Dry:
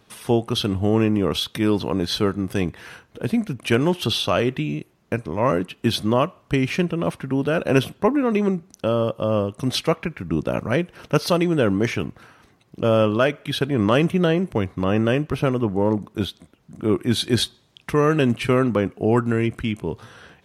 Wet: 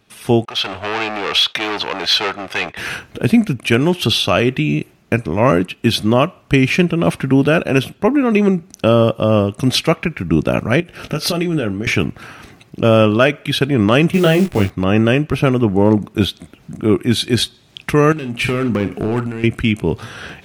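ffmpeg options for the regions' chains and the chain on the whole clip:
-filter_complex "[0:a]asettb=1/sr,asplit=3[s0][s1][s2];[s0]atrim=end=0.454[s3];[s1]atrim=start=0.45:end=2.77,asetpts=PTS-STARTPTS,afade=t=in:d=0.004:c=qsin,afade=t=out:st=2.316:d=0.004:c=qsin,asoftclip=type=hard:threshold=0.0631,acrossover=split=530 5600:gain=0.0708 1 0.141[s4][s5][s6];[s4][s5][s6]amix=inputs=3:normalize=0,agate=range=0.0224:threshold=0.00501:ratio=3:release=100:detection=peak[s7];[s2]atrim=start=2.766[s8];[s3][s7]acrossfade=d=0.004:c1=hsin:c2=qsin[s9];[s9][s8]acrossfade=d=0.004:c1=qsin:c2=hsin,asettb=1/sr,asplit=3[s10][s11][s12];[s10]atrim=end=10.804[s13];[s11]atrim=start=10.8:end=11.87,asetpts=PTS-STARTPTS,afade=t=in:d=0.004:c=qsin,afade=t=out:st=1.066:d=0.004:c=qsin,bandreject=f=1000:w=6.1,acompressor=threshold=0.0316:ratio=8:attack=3.2:release=140:knee=1:detection=peak,asplit=2[s14][s15];[s15]adelay=19,volume=0.376[s16];[s14][s16]amix=inputs=2:normalize=0,atrim=end_sample=47187[s17];[s12]atrim=start=11.866[s18];[s13][s17]acrossfade=d=0.004:c1=hsin:c2=qsin[s19];[s19][s18]acrossfade=d=0.004:c1=qsin:c2=hsin,asettb=1/sr,asplit=3[s20][s21][s22];[s20]atrim=end=14.134[s23];[s21]atrim=start=14.13:end=14.7,asetpts=PTS-STARTPTS,afade=t=in:d=0.004:c=qsin,afade=t=out:st=0.566:d=0.004:c=qsin,acrusher=bits=7:dc=4:mix=0:aa=0.000001,asplit=2[s24][s25];[s25]adelay=20,volume=0.631[s26];[s24][s26]amix=inputs=2:normalize=0,atrim=end_sample=25137[s27];[s22]atrim=start=14.696[s28];[s23][s27]acrossfade=d=0.004:c1=hsin:c2=qsin[s29];[s29][s28]acrossfade=d=0.004:c1=qsin:c2=hsin,asettb=1/sr,asplit=3[s30][s31][s32];[s30]atrim=end=18.124[s33];[s31]atrim=start=18.12:end=19.44,asetpts=PTS-STARTPTS,afade=t=in:d=0.004:c=qsin,afade=t=out:st=1.316:d=0.004:c=qsin,acompressor=threshold=0.0316:ratio=4:attack=3.2:release=140:knee=1:detection=peak,asoftclip=type=hard:threshold=0.0447,asplit=2[s34][s35];[s35]adelay=49,volume=0.282[s36];[s34][s36]amix=inputs=2:normalize=0,atrim=end_sample=58212[s37];[s32]atrim=start=19.436[s38];[s33][s37]acrossfade=d=0.004:c1=hsin:c2=qsin[s39];[s39][s38]acrossfade=d=0.004:c1=qsin:c2=hsin,equalizer=f=500:t=o:w=0.33:g=-4,equalizer=f=1000:t=o:w=0.33:g=-5,equalizer=f=2500:t=o:w=0.33:g=4,dynaudnorm=f=140:g=3:m=6.68,volume=0.891"

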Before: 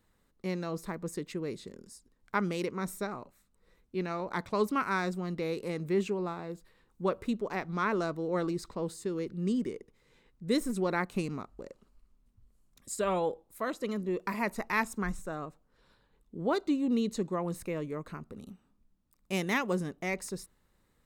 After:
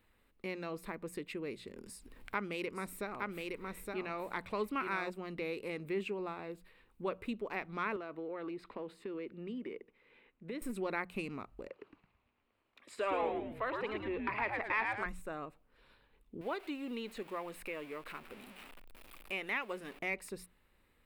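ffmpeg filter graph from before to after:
-filter_complex "[0:a]asettb=1/sr,asplit=3[s0][s1][s2];[s0]atrim=end=1.774[s3];[s1]atrim=start=1.77:end=5.1,asetpts=PTS-STARTPTS,afade=t=in:d=0.004:c=qsin,afade=t=out:st=3.326:d=0.004:c=qsin,acompressor=mode=upward:threshold=0.0126:ratio=2.5:attack=3.2:release=140:knee=2.83:detection=peak,aecho=1:1:866:0.631,atrim=end_sample=146853[s4];[s2]atrim=start=5.096[s5];[s3][s4]acrossfade=d=0.004:c1=hsin:c2=qsin[s6];[s6][s5]acrossfade=d=0.004:c1=qsin:c2=hsin,asettb=1/sr,asplit=3[s7][s8][s9];[s7]atrim=end=7.964[s10];[s8]atrim=start=7.96:end=10.62,asetpts=PTS-STARTPTS,afade=t=in:d=0.004:c=qsin,afade=t=out:st=2.656:d=0.004:c=qsin,acrossover=split=170 3600:gain=0.2 1 0.126[s11][s12][s13];[s11][s12][s13]amix=inputs=3:normalize=0,acompressor=threshold=0.0224:ratio=6:attack=3.2:release=140:knee=1:detection=peak[s14];[s9]atrim=start=10.616[s15];[s10][s14]acrossfade=d=0.004:c1=hsin:c2=qsin[s16];[s16][s15]acrossfade=d=0.004:c1=qsin:c2=hsin,asettb=1/sr,asplit=3[s17][s18][s19];[s17]atrim=end=11.684[s20];[s18]atrim=start=11.68:end=15.06,asetpts=PTS-STARTPTS,afade=t=in:d=0.004:c=qsin,afade=t=out:st=3.376:d=0.004:c=qsin,acrossover=split=230 5600:gain=0.0794 1 0.224[s21][s22][s23];[s21][s22][s23]amix=inputs=3:normalize=0,asplit=2[s24][s25];[s25]highpass=f=720:p=1,volume=3.98,asoftclip=type=tanh:threshold=0.188[s26];[s24][s26]amix=inputs=2:normalize=0,lowpass=f=1900:p=1,volume=0.501,asplit=6[s27][s28][s29][s30][s31][s32];[s28]adelay=110,afreqshift=-120,volume=0.668[s33];[s29]adelay=220,afreqshift=-240,volume=0.275[s34];[s30]adelay=330,afreqshift=-360,volume=0.112[s35];[s31]adelay=440,afreqshift=-480,volume=0.0462[s36];[s32]adelay=550,afreqshift=-600,volume=0.0188[s37];[s27][s33][s34][s35][s36][s37]amix=inputs=6:normalize=0,atrim=end_sample=149058[s38];[s19]atrim=start=15.056[s39];[s20][s38]acrossfade=d=0.004:c1=hsin:c2=qsin[s40];[s40][s39]acrossfade=d=0.004:c1=qsin:c2=hsin,asettb=1/sr,asplit=3[s41][s42][s43];[s41]atrim=end=16.414[s44];[s42]atrim=start=16.41:end=19.99,asetpts=PTS-STARTPTS,afade=t=in:d=0.004:c=qsin,afade=t=out:st=3.576:d=0.004:c=qsin,aeval=exprs='val(0)+0.5*0.00596*sgn(val(0))':c=same,equalizer=f=94:w=0.35:g=-14.5,acrossover=split=2900[s45][s46];[s46]acompressor=threshold=0.00501:ratio=4:attack=1:release=60[s47];[s45][s47]amix=inputs=2:normalize=0[s48];[s43]atrim=start=19.986[s49];[s44][s48]acrossfade=d=0.004:c1=hsin:c2=qsin[s50];[s50][s49]acrossfade=d=0.004:c1=qsin:c2=hsin,equalizer=f=160:t=o:w=0.67:g=-6,equalizer=f=2500:t=o:w=0.67:g=9,equalizer=f=6300:t=o:w=0.67:g=-11,acompressor=threshold=0.00562:ratio=1.5,bandreject=f=60:t=h:w=6,bandreject=f=120:t=h:w=6,bandreject=f=180:t=h:w=6"

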